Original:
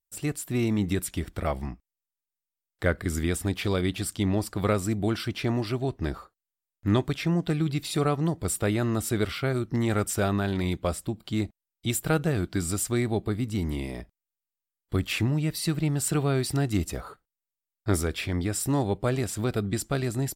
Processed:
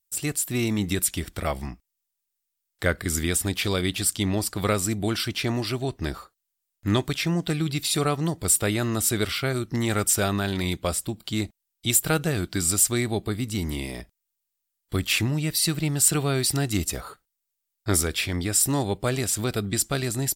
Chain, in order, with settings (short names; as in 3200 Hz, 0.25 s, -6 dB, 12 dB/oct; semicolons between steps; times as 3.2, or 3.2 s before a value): high shelf 2400 Hz +11 dB